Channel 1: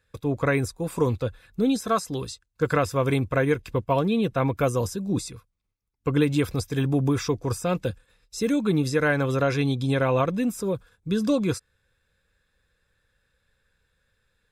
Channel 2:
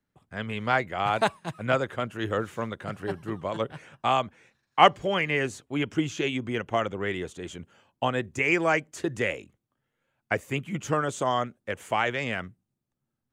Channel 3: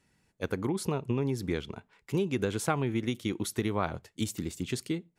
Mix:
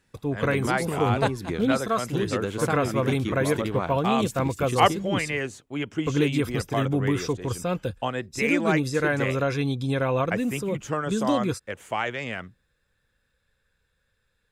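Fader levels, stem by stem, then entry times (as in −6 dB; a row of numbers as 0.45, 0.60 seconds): −2.0, −2.0, +0.5 decibels; 0.00, 0.00, 0.00 seconds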